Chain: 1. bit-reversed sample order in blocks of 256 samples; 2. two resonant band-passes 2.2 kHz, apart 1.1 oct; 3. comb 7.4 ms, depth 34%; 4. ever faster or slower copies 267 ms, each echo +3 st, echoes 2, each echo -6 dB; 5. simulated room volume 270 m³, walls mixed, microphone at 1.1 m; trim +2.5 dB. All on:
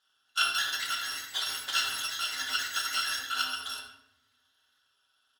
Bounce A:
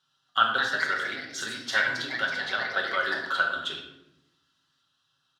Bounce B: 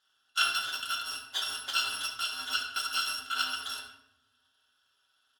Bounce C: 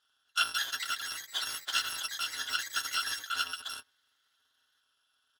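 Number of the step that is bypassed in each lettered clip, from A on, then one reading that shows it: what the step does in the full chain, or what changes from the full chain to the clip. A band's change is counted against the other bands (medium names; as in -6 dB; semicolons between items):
1, 8 kHz band -15.0 dB; 4, loudness change -1.0 LU; 5, echo-to-direct 0.0 dB to none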